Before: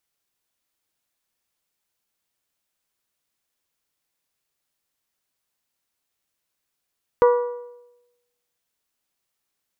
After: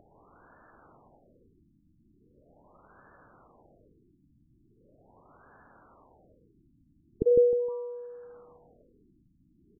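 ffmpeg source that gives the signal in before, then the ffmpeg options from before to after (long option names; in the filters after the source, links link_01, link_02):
-f lavfi -i "aevalsrc='0.316*pow(10,-3*t/0.95)*sin(2*PI*485*t)+0.141*pow(10,-3*t/0.772)*sin(2*PI*970*t)+0.0631*pow(10,-3*t/0.731)*sin(2*PI*1164*t)+0.0282*pow(10,-3*t/0.683)*sin(2*PI*1455*t)+0.0126*pow(10,-3*t/0.627)*sin(2*PI*1940*t)':duration=1.55:sample_rate=44100"
-filter_complex "[0:a]acompressor=mode=upward:threshold=-21dB:ratio=2.5,asplit=2[link_01][link_02];[link_02]aecho=0:1:155|310|465:0.447|0.121|0.0326[link_03];[link_01][link_03]amix=inputs=2:normalize=0,afftfilt=real='re*lt(b*sr/1024,320*pow(1800/320,0.5+0.5*sin(2*PI*0.4*pts/sr)))':imag='im*lt(b*sr/1024,320*pow(1800/320,0.5+0.5*sin(2*PI*0.4*pts/sr)))':win_size=1024:overlap=0.75"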